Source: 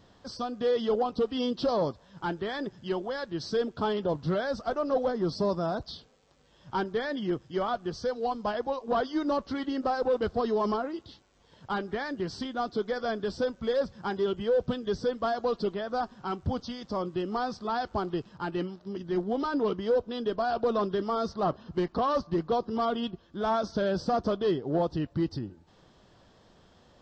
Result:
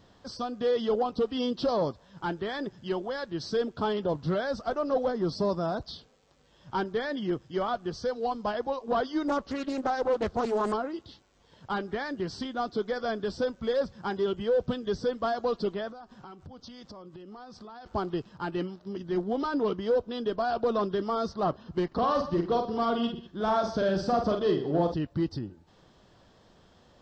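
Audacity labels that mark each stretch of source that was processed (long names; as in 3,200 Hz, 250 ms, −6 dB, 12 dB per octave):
9.280000	10.730000	highs frequency-modulated by the lows depth 0.58 ms
15.900000	17.860000	downward compressor 16 to 1, threshold −42 dBFS
21.870000	24.940000	multi-tap delay 47/121/198 ms −5.5/−14.5/−17.5 dB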